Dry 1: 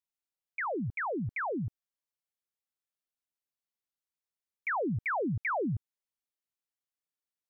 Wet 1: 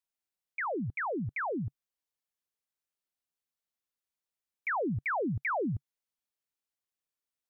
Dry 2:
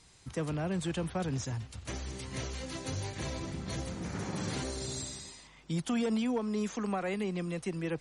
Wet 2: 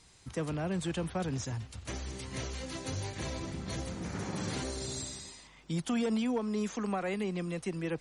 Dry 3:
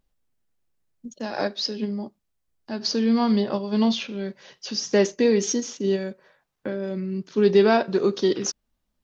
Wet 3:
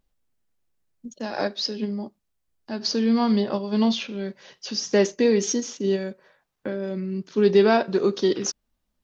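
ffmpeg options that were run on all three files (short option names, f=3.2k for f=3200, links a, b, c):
-af "equalizer=f=140:t=o:w=0.33:g=-2"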